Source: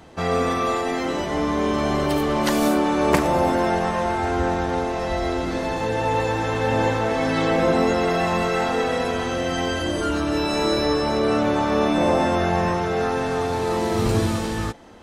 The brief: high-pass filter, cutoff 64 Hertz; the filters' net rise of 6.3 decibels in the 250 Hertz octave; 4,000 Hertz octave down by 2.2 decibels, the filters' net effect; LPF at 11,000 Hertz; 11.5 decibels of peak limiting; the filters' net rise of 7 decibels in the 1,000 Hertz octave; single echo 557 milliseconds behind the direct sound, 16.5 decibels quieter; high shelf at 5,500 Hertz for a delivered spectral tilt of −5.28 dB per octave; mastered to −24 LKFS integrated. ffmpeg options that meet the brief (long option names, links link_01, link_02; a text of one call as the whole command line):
ffmpeg -i in.wav -af "highpass=64,lowpass=11000,equalizer=frequency=250:width_type=o:gain=7.5,equalizer=frequency=1000:width_type=o:gain=8.5,equalizer=frequency=4000:width_type=o:gain=-5.5,highshelf=frequency=5500:gain=5.5,alimiter=limit=-11dB:level=0:latency=1,aecho=1:1:557:0.15,volume=-4.5dB" out.wav